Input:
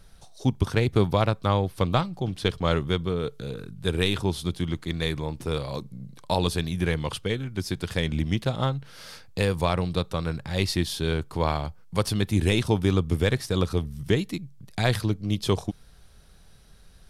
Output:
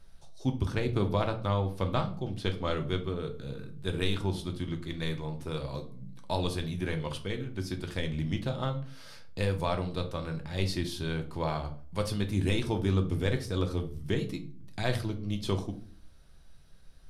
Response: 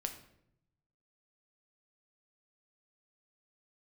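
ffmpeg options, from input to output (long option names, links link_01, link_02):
-filter_complex "[0:a]highshelf=frequency=7400:gain=-4[link_01];[1:a]atrim=start_sample=2205,asetrate=88200,aresample=44100[link_02];[link_01][link_02]afir=irnorm=-1:irlink=0"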